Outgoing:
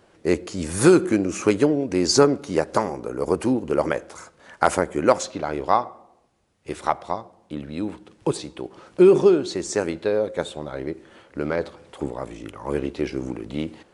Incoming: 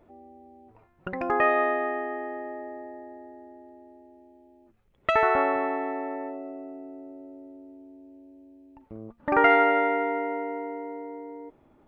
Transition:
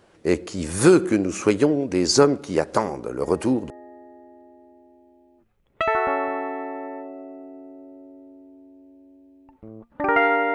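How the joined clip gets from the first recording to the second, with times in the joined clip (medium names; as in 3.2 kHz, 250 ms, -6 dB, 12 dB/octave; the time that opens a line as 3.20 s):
outgoing
3.23 s: add incoming from 2.51 s 0.47 s -7 dB
3.70 s: go over to incoming from 2.98 s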